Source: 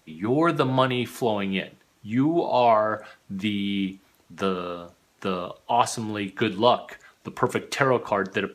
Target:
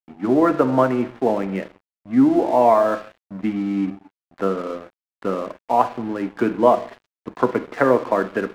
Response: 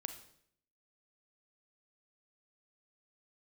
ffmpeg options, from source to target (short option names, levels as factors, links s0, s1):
-filter_complex "[0:a]highpass=f=140:w=0.5412,highpass=f=140:w=1.3066,equalizer=f=160:t=q:w=4:g=-10,equalizer=f=270:t=q:w=4:g=6,equalizer=f=540:t=q:w=4:g=4,lowpass=f=2200:w=0.5412,lowpass=f=2200:w=1.3066,asplit=2[s0][s1];[1:a]atrim=start_sample=2205,lowpass=2200,lowshelf=f=230:g=3[s2];[s1][s2]afir=irnorm=-1:irlink=0,volume=1.58[s3];[s0][s3]amix=inputs=2:normalize=0,aeval=exprs='sgn(val(0))*max(abs(val(0))-0.0188,0)':c=same,volume=0.708"